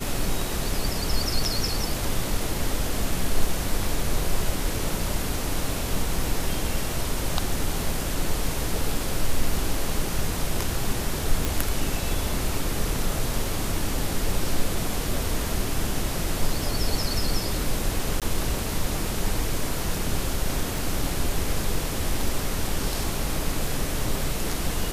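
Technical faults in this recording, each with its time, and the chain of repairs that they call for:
11.45 pop
18.2–18.22 gap 17 ms
20.78 pop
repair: de-click; interpolate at 18.2, 17 ms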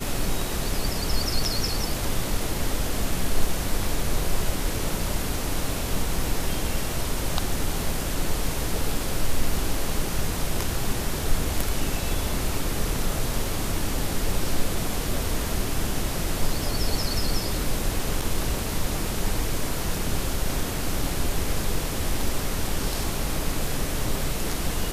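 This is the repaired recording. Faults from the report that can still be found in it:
none

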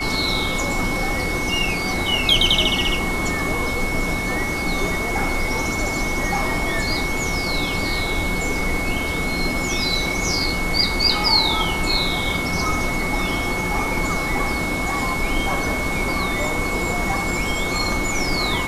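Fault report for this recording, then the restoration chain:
tone 2200 Hz -25 dBFS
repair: notch 2200 Hz, Q 30

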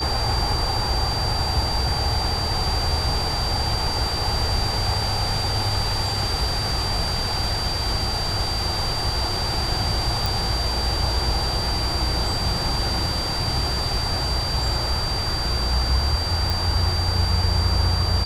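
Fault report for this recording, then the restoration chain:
tone 4700 Hz -26 dBFS
10.26 pop
16.5 pop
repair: de-click; notch 4700 Hz, Q 30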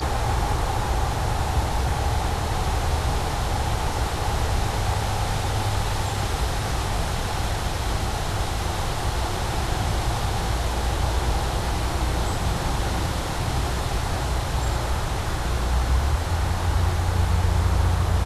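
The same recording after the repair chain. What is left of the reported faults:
none

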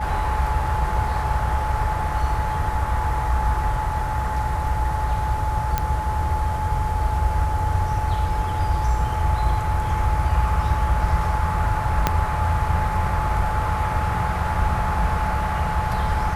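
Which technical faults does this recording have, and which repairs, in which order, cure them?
tone 860 Hz -26 dBFS
5.78 pop -7 dBFS
12.07 pop -3 dBFS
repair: de-click; notch 860 Hz, Q 30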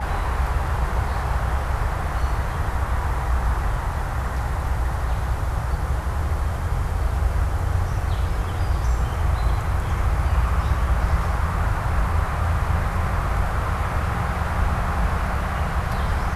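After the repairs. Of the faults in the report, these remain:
12.07 pop

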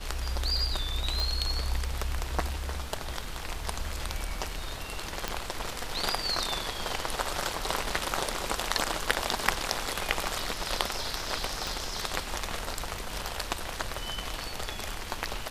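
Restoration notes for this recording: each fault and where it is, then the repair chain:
1.2 pop
5.28 pop -13 dBFS
11.67 pop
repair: de-click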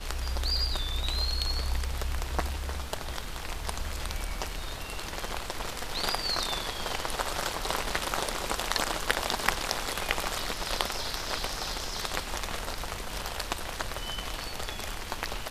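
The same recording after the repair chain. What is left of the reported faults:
11.67 pop

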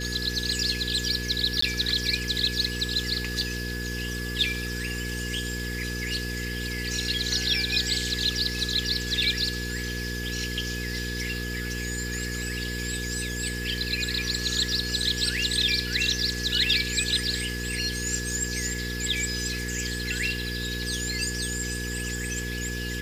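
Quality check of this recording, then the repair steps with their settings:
hum 60 Hz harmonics 8 -33 dBFS
tone 1700 Hz -35 dBFS
1.61–1.62 gap 14 ms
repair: notch 1700 Hz, Q 30; de-hum 60 Hz, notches 8; interpolate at 1.61, 14 ms

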